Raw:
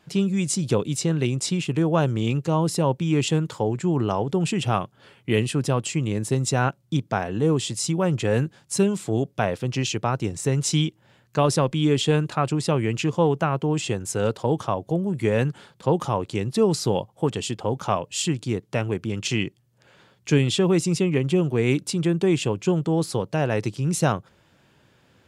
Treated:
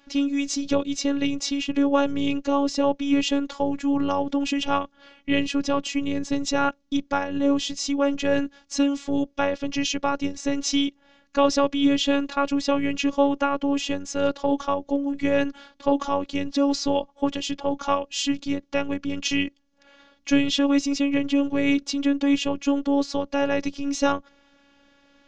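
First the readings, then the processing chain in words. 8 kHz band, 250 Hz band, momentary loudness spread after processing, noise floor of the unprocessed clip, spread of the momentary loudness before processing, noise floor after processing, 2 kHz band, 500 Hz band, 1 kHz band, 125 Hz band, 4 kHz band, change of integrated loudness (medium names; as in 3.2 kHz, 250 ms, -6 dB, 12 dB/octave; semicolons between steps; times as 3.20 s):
-3.5 dB, +2.0 dB, 6 LU, -61 dBFS, 6 LU, -61 dBFS, +1.0 dB, -1.5 dB, +1.0 dB, -18.5 dB, +1.5 dB, -0.5 dB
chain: elliptic low-pass 6.4 kHz, stop band 60 dB; robot voice 281 Hz; trim +4 dB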